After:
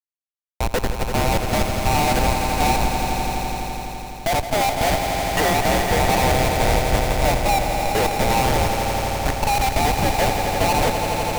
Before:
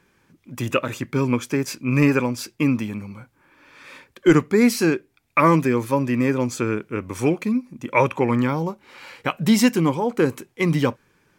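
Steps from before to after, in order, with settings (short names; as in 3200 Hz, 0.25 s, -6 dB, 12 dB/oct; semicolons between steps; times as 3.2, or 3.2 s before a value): band inversion scrambler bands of 1000 Hz; HPF 420 Hz 6 dB/oct; bell 7400 Hz -14 dB 2 oct; Schmitt trigger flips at -21.5 dBFS; swelling echo 84 ms, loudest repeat 5, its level -9 dB; gain +4.5 dB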